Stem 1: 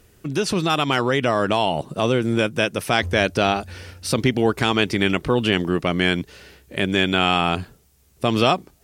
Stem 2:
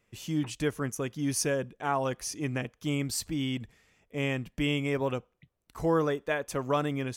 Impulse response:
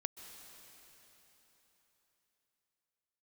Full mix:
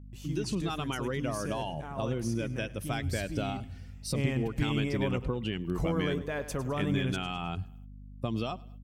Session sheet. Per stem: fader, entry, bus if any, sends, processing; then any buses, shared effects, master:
-8.5 dB, 0.00 s, no send, echo send -23.5 dB, expander on every frequency bin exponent 1.5; compression 10:1, threshold -23 dBFS, peak gain reduction 9.5 dB
3.69 s -8 dB -> 4.04 s -1 dB, 0.00 s, no send, echo send -13.5 dB, peak limiter -25 dBFS, peak gain reduction 9.5 dB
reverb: none
echo: feedback delay 104 ms, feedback 48%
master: bass shelf 170 Hz +11 dB; gate -59 dBFS, range -20 dB; hum 50 Hz, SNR 14 dB

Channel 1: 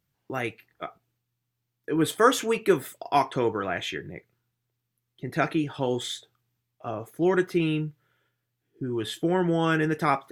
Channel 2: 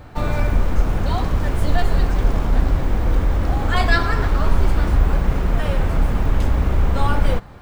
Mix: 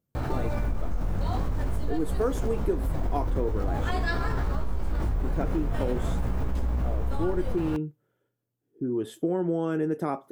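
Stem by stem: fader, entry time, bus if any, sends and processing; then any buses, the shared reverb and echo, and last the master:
-5.5 dB, 0.00 s, no send, graphic EQ 250/500/2000/4000 Hz +8/+7/-8/-8 dB
-7.5 dB, 0.15 s, no send, peaking EQ 2.6 kHz -5.5 dB 2.2 oct; chorus 0.47 Hz, delay 15.5 ms, depth 5.9 ms; level flattener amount 70%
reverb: none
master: compression 4:1, threshold -23 dBFS, peak gain reduction 10 dB

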